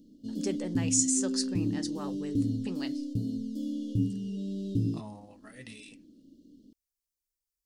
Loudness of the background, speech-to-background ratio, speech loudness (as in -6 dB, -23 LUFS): -33.0 LUFS, 0.5 dB, -32.5 LUFS